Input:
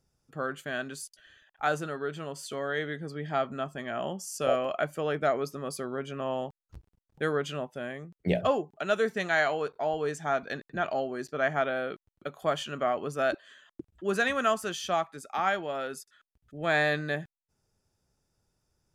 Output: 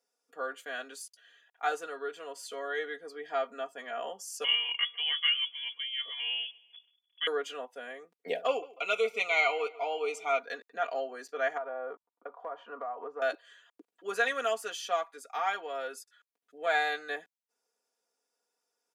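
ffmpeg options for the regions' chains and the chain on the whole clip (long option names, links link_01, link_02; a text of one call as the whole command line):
ffmpeg -i in.wav -filter_complex "[0:a]asettb=1/sr,asplit=3[link_01][link_02][link_03];[link_01]atrim=end=4.444[link_04];[link_02]atrim=start=4.44:end=7.27,asetpts=PTS-STARTPTS,afade=type=in:duration=0.004:curve=qsin,afade=type=out:start_time=2.826:duration=0.004:curve=qsin,aecho=1:1:148|296|444:0.0668|0.0294|0.0129,atrim=end_sample=124803,lowpass=frequency=3000:width_type=q:width=0.5098,lowpass=frequency=3000:width_type=q:width=0.6013,lowpass=frequency=3000:width_type=q:width=0.9,lowpass=frequency=3000:width_type=q:width=2.563,afreqshift=-3500[link_05];[link_03]atrim=start=7.266[link_06];[link_04][link_05]acrossfade=duration=0.004:curve1=hsin:curve2=qsin[link_07];[link_07][link_06]acrossfade=duration=0.004:curve1=qsin:curve2=hsin,asettb=1/sr,asplit=3[link_08][link_09][link_10];[link_08]atrim=end=8.484[link_11];[link_09]atrim=start=8.48:end=10.39,asetpts=PTS-STARTPTS,afade=type=in:duration=0.004:curve=qsin,afade=type=out:start_time=1.906:duration=0.004:curve=qsin,asuperstop=centerf=1700:order=8:qfactor=2.6,equalizer=frequency=2300:width=1.9:gain=14.5,asplit=2[link_12][link_13];[link_13]adelay=142,lowpass=frequency=4800:poles=1,volume=-19.5dB,asplit=2[link_14][link_15];[link_15]adelay=142,lowpass=frequency=4800:poles=1,volume=0.38,asplit=2[link_16][link_17];[link_17]adelay=142,lowpass=frequency=4800:poles=1,volume=0.38[link_18];[link_12][link_14][link_16][link_18]amix=inputs=4:normalize=0,atrim=end_sample=84231[link_19];[link_10]atrim=start=10.386[link_20];[link_11][link_19]acrossfade=duration=0.004:curve1=hsin:curve2=qsin[link_21];[link_21][link_20]acrossfade=duration=0.004:curve1=qsin:curve2=hsin,asettb=1/sr,asplit=3[link_22][link_23][link_24];[link_22]atrim=end=11.574[link_25];[link_23]atrim=start=11.57:end=13.22,asetpts=PTS-STARTPTS,afade=type=in:duration=0.004:curve=qsin,afade=type=out:start_time=1.646:duration=0.004:curve=qsin,lowpass=frequency=1000:width_type=q:width=2.8,acompressor=threshold=-31dB:ratio=5:attack=3.2:release=140:knee=1:detection=peak[link_26];[link_24]atrim=start=13.216[link_27];[link_25][link_26]acrossfade=duration=0.004:curve1=hsin:curve2=qsin[link_28];[link_28][link_27]acrossfade=duration=0.004:curve1=qsin:curve2=hsin,asettb=1/sr,asplit=3[link_29][link_30][link_31];[link_29]atrim=end=16.664[link_32];[link_30]atrim=start=16.66:end=17.09,asetpts=PTS-STARTPTS,afade=type=in:duration=0.004:curve=qsin,afade=type=out:start_time=0.426:duration=0.004:curve=qsin,highpass=190,aecho=1:1:1.4:0.46,atrim=end_sample=18963[link_33];[link_31]atrim=start=17.086[link_34];[link_32][link_33]acrossfade=duration=0.004:curve1=hsin:curve2=qsin[link_35];[link_35][link_34]acrossfade=duration=0.004:curve1=qsin:curve2=hsin,highpass=frequency=380:width=0.5412,highpass=frequency=380:width=1.3066,aecho=1:1:4.2:0.86,volume=-5dB" out.wav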